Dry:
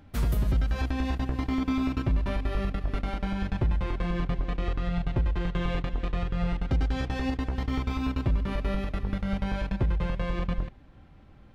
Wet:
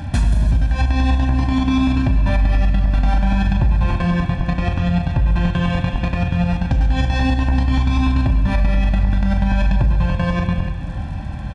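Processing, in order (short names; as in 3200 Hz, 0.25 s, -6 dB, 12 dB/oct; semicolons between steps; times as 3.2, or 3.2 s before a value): HPF 54 Hz 12 dB/oct; low shelf 120 Hz +4.5 dB; comb 1.2 ms, depth 94%; compressor 12:1, threshold -32 dBFS, peak gain reduction 18.5 dB; crackle 68/s -57 dBFS; on a send at -6 dB: reverb RT60 1.7 s, pre-delay 15 ms; on the sum: downsampling 22050 Hz; maximiser +27 dB; gain -7 dB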